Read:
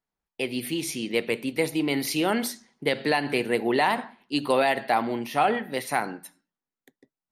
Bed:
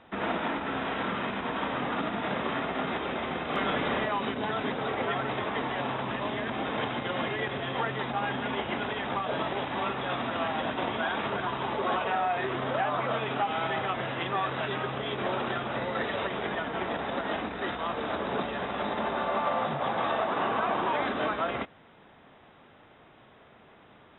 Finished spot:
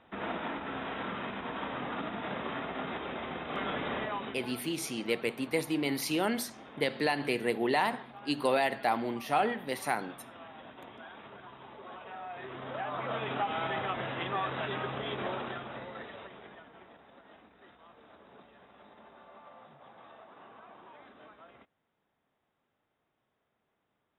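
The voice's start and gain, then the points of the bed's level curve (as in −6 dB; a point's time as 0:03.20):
3.95 s, −5.5 dB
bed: 0:04.16 −6 dB
0:04.65 −18.5 dB
0:11.91 −18.5 dB
0:13.29 −3.5 dB
0:15.15 −3.5 dB
0:17.04 −25 dB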